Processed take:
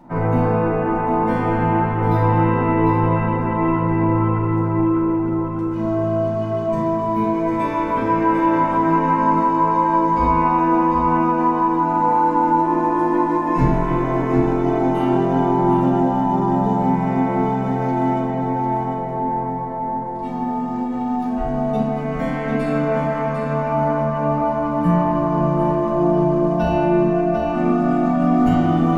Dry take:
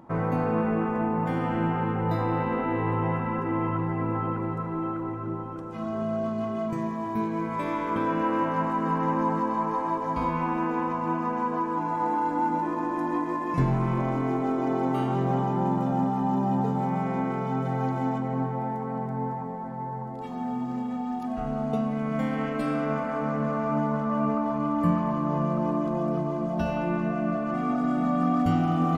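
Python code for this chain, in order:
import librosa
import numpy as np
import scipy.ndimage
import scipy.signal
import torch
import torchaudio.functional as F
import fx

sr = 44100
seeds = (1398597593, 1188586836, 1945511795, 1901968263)

y = x + 10.0 ** (-6.5 / 20.0) * np.pad(x, (int(749 * sr / 1000.0), 0))[:len(x)]
y = fx.room_shoebox(y, sr, seeds[0], volume_m3=330.0, walls='furnished', distance_m=7.3)
y = F.gain(torch.from_numpy(y), -5.0).numpy()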